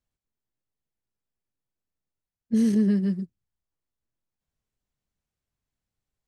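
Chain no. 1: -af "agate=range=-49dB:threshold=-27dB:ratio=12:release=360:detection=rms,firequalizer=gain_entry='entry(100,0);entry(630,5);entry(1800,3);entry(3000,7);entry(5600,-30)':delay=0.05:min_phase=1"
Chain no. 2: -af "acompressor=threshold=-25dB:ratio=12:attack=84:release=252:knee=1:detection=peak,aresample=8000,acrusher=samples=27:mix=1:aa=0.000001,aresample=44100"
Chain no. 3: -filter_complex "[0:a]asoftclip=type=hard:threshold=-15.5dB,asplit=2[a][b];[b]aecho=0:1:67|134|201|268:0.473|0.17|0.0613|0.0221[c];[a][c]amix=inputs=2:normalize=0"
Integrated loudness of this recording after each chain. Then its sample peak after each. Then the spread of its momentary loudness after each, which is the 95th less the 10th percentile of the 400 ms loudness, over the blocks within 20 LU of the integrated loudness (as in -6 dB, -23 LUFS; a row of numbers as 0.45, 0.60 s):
-23.0, -29.0, -23.5 LUFS; -13.0, -15.0, -12.0 dBFS; 12, 8, 8 LU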